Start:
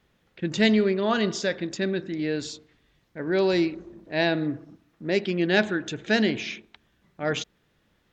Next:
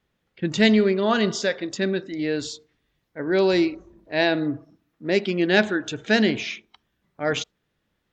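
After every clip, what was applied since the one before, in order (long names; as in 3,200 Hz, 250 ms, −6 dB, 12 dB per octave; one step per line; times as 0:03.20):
noise reduction from a noise print of the clip's start 10 dB
level +3 dB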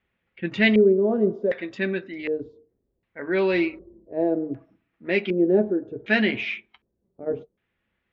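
notch comb filter 150 Hz
auto-filter low-pass square 0.66 Hz 460–2,400 Hz
level −2.5 dB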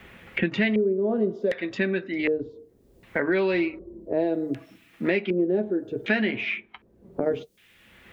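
multiband upward and downward compressor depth 100%
level −2 dB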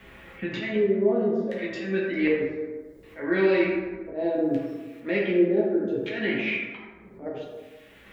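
volume swells 160 ms
dense smooth reverb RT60 1.4 s, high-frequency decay 0.45×, DRR −4.5 dB
level −4 dB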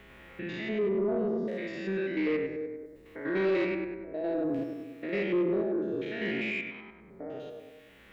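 spectrum averaged block by block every 100 ms
soft clipping −18 dBFS, distortion −19 dB
level −3 dB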